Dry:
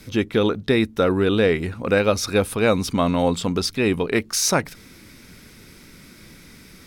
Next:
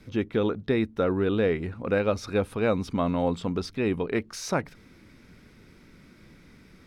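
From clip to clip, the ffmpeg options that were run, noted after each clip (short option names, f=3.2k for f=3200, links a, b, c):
-af "lowpass=f=1.8k:p=1,volume=-5.5dB"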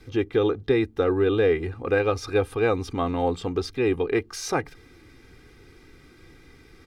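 -af "aecho=1:1:2.5:0.72,volume=1dB"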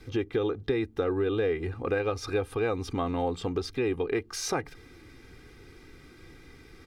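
-af "acompressor=threshold=-27dB:ratio=2.5"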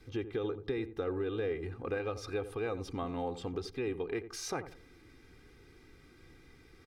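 -filter_complex "[0:a]asplit=2[a][b];[b]adelay=86,lowpass=f=940:p=1,volume=-11dB,asplit=2[c][d];[d]adelay=86,lowpass=f=940:p=1,volume=0.3,asplit=2[e][f];[f]adelay=86,lowpass=f=940:p=1,volume=0.3[g];[a][c][e][g]amix=inputs=4:normalize=0,volume=-7.5dB"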